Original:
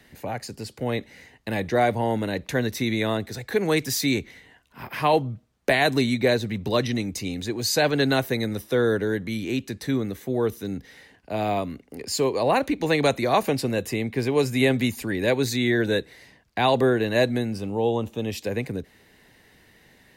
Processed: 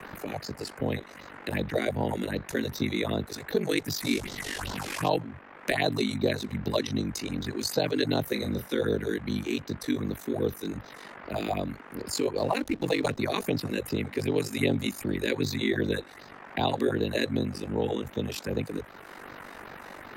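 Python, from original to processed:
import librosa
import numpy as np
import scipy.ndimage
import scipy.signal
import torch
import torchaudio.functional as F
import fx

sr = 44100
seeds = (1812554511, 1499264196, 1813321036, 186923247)

y = fx.delta_mod(x, sr, bps=64000, step_db=-26.5, at=(4.01, 5.09))
y = fx.phaser_stages(y, sr, stages=4, low_hz=110.0, high_hz=2200.0, hz=2.6, feedback_pct=25)
y = fx.dmg_noise_band(y, sr, seeds[0], low_hz=180.0, high_hz=1900.0, level_db=-50.0)
y = y * np.sin(2.0 * np.pi * 24.0 * np.arange(len(y)) / sr)
y = fx.doubler(y, sr, ms=33.0, db=-9, at=(8.23, 8.68))
y = fx.backlash(y, sr, play_db=-40.0, at=(12.37, 13.18))
y = fx.band_squash(y, sr, depth_pct=40)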